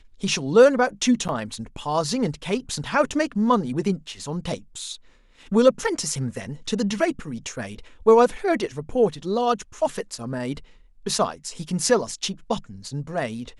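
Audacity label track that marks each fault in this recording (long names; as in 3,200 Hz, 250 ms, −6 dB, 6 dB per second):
1.280000	1.290000	drop-out 8.6 ms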